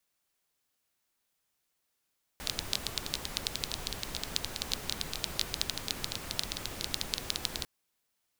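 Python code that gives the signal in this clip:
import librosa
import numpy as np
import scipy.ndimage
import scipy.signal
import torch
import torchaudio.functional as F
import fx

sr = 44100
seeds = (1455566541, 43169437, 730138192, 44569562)

y = fx.rain(sr, seeds[0], length_s=5.25, drops_per_s=12.0, hz=4000.0, bed_db=-2.5)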